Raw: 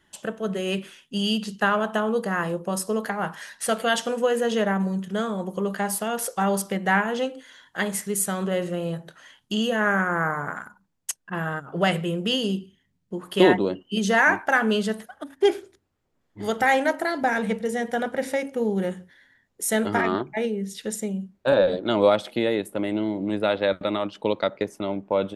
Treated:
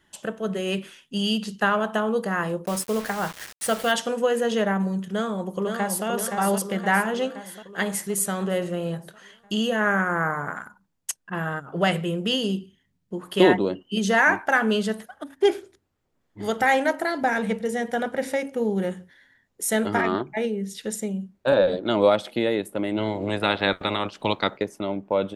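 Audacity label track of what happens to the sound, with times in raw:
2.660000	3.920000	bit-depth reduction 6 bits, dither none
5.090000	6.060000	delay throw 520 ms, feedback 60%, level −5 dB
22.970000	24.560000	ceiling on every frequency bin ceiling under each frame's peak by 16 dB

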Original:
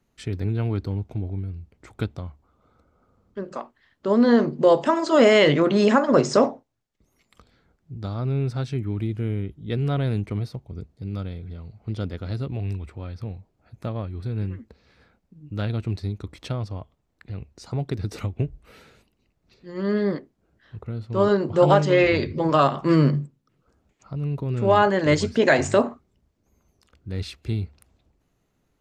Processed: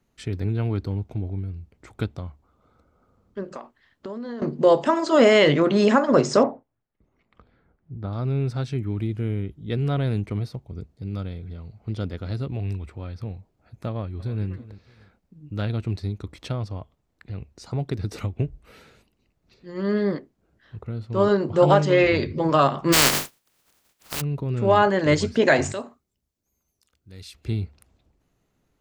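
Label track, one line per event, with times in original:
3.540000	4.420000	downward compressor 12 to 1, threshold −30 dBFS
6.430000	8.130000	low-pass filter 2,000 Hz
13.880000	14.470000	delay throw 310 ms, feedback 25%, level −16.5 dB
22.920000	24.200000	compressing power law on the bin magnitudes exponent 0.16
25.720000	27.350000	first-order pre-emphasis coefficient 0.8

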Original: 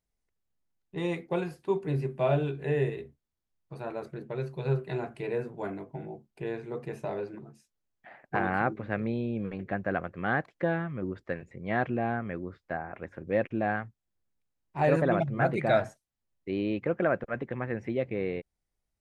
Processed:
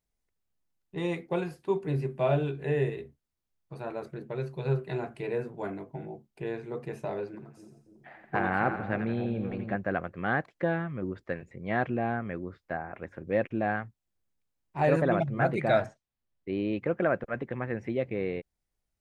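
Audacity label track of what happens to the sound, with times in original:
7.280000	9.760000	echo with a time of its own for lows and highs split 690 Hz, lows 290 ms, highs 86 ms, level −8 dB
15.860000	16.730000	high-frequency loss of the air 120 metres

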